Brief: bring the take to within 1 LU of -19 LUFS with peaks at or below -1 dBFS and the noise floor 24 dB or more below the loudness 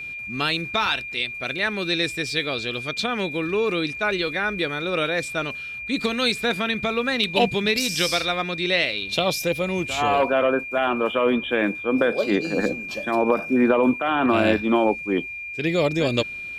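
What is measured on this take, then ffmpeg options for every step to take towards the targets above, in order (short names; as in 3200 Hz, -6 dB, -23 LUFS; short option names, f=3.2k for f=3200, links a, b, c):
steady tone 2400 Hz; tone level -31 dBFS; loudness -22.5 LUFS; peak -6.5 dBFS; loudness target -19.0 LUFS
-> -af "bandreject=f=2.4k:w=30"
-af "volume=3.5dB"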